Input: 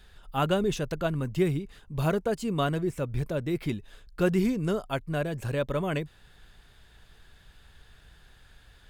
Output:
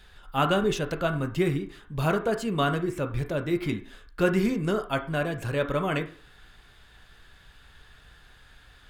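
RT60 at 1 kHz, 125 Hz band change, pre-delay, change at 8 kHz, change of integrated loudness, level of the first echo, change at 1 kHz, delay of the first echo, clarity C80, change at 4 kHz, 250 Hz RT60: 0.40 s, 0.0 dB, 6 ms, +1.0 dB, +2.0 dB, no echo audible, +4.0 dB, no echo audible, 16.5 dB, +3.5 dB, 0.40 s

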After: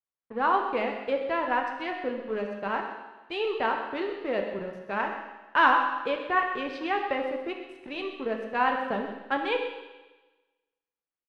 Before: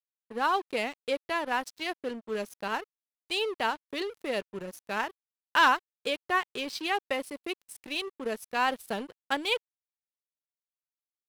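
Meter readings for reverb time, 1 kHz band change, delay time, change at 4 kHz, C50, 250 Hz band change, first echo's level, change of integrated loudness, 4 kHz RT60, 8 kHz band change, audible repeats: 1.2 s, +3.5 dB, 130 ms, −5.5 dB, 5.0 dB, +3.5 dB, −12.0 dB, +2.0 dB, 1.2 s, below −15 dB, 1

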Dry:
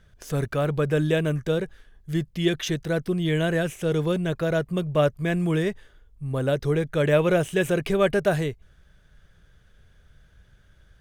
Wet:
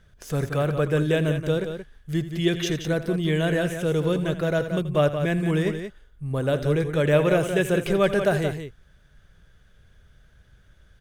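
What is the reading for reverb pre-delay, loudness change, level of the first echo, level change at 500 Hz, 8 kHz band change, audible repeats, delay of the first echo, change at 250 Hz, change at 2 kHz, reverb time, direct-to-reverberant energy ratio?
no reverb audible, +0.5 dB, −14.5 dB, +0.5 dB, +0.5 dB, 2, 82 ms, +0.5 dB, +0.5 dB, no reverb audible, no reverb audible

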